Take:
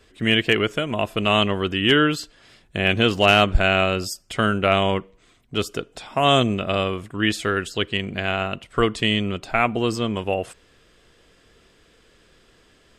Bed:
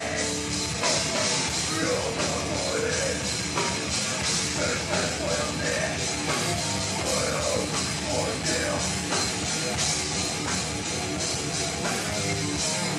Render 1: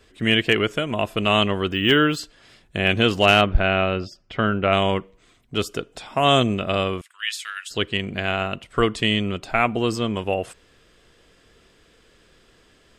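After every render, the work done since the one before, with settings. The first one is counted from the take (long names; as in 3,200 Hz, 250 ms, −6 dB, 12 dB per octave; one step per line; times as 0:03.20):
0:01.69–0:02.17: linearly interpolated sample-rate reduction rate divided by 2×
0:03.41–0:04.73: high-frequency loss of the air 240 metres
0:07.01–0:07.71: Bessel high-pass filter 2,200 Hz, order 4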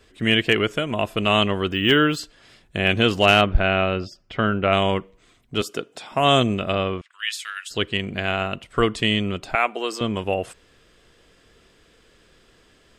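0:05.61–0:06.12: high-pass filter 170 Hz
0:06.73–0:07.13: high-frequency loss of the air 150 metres
0:09.55–0:10.01: Bessel high-pass filter 480 Hz, order 4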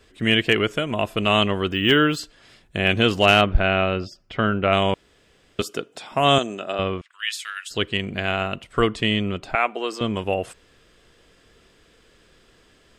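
0:04.94–0:05.59: fill with room tone
0:06.38–0:06.79: loudspeaker in its box 390–8,900 Hz, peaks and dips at 500 Hz −5 dB, 1,100 Hz −6 dB, 2,200 Hz −10 dB, 3,200 Hz −5 dB, 4,600 Hz −6 dB, 6,800 Hz +8 dB
0:08.87–0:10.01: high-shelf EQ 5,300 Hz −7 dB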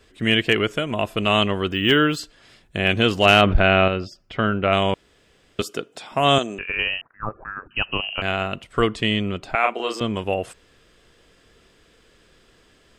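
0:03.25–0:03.88: envelope flattener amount 50%
0:06.58–0:08.22: voice inversion scrambler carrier 3,000 Hz
0:09.60–0:10.00: double-tracking delay 35 ms −2.5 dB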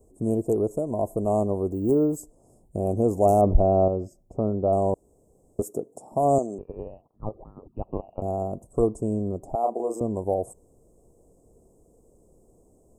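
inverse Chebyshev band-stop filter 1,500–4,300 Hz, stop band 50 dB
dynamic equaliser 160 Hz, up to −5 dB, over −33 dBFS, Q 0.98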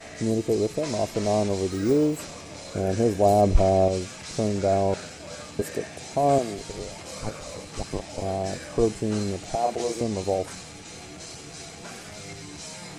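mix in bed −12.5 dB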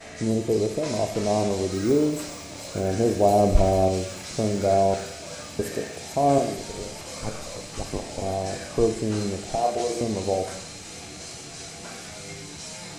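delay with a high-pass on its return 443 ms, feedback 82%, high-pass 3,200 Hz, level −7.5 dB
four-comb reverb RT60 0.74 s, combs from 25 ms, DRR 7 dB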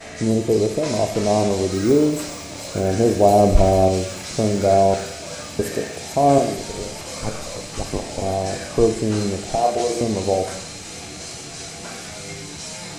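level +5 dB
brickwall limiter −2 dBFS, peak gain reduction 1.5 dB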